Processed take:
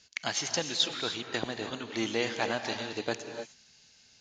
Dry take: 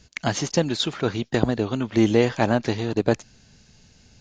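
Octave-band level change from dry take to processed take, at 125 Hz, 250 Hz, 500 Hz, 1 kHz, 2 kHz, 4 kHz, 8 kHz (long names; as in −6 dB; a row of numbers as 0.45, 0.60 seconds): −19.0, −15.0, −11.5, −8.0, −3.5, −0.5, −1.5 decibels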